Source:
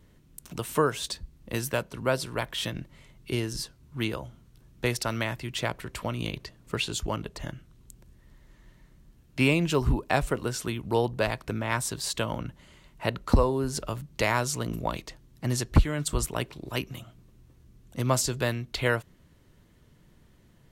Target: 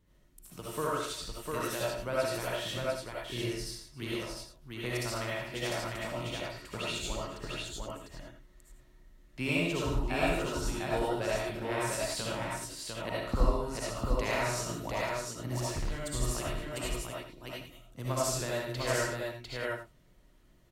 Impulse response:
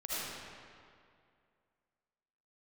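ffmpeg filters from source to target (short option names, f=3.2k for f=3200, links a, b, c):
-filter_complex "[1:a]atrim=start_sample=2205,afade=t=out:st=0.16:d=0.01,atrim=end_sample=7497[a];[0:a][a]afir=irnorm=-1:irlink=0,asettb=1/sr,asplit=3[b][c][d];[b]atrim=end=15.544[e];[c]atrim=start=15.54:end=16.1,asetpts=PTS-STARTPTS,afade=t=in:d=0.004:c=qsin,afade=t=out:st=0.556:d=0.004:c=qsin,volume=26dB,asoftclip=hard,volume=-26dB[f];[d]atrim=start=16.096[g];[e][f]acrossfade=d=0.004:c1=hsin:c2=qsin[h];[h][g]acrossfade=d=0.004:c1=qsin:c2=hsin,aecho=1:1:65|114|148|272|700|784:0.562|0.299|0.237|0.106|0.708|0.251,volume=-6.5dB"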